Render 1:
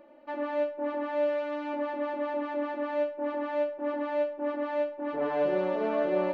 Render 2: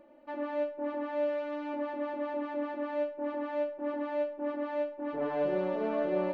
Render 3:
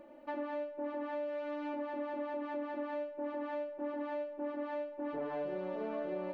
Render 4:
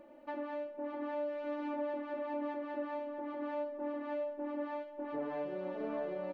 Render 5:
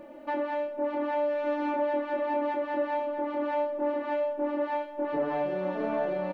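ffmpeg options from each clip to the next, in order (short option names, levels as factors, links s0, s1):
-af "lowshelf=f=270:g=6.5,volume=0.596"
-af "acompressor=threshold=0.0112:ratio=6,volume=1.41"
-filter_complex "[0:a]asplit=2[s0][s1];[s1]adelay=654,lowpass=f=2400:p=1,volume=0.501,asplit=2[s2][s3];[s3]adelay=654,lowpass=f=2400:p=1,volume=0.46,asplit=2[s4][s5];[s5]adelay=654,lowpass=f=2400:p=1,volume=0.46,asplit=2[s6][s7];[s7]adelay=654,lowpass=f=2400:p=1,volume=0.46,asplit=2[s8][s9];[s9]adelay=654,lowpass=f=2400:p=1,volume=0.46,asplit=2[s10][s11];[s11]adelay=654,lowpass=f=2400:p=1,volume=0.46[s12];[s0][s2][s4][s6][s8][s10][s12]amix=inputs=7:normalize=0,volume=0.841"
-filter_complex "[0:a]asplit=2[s0][s1];[s1]adelay=26,volume=0.562[s2];[s0][s2]amix=inputs=2:normalize=0,volume=2.82"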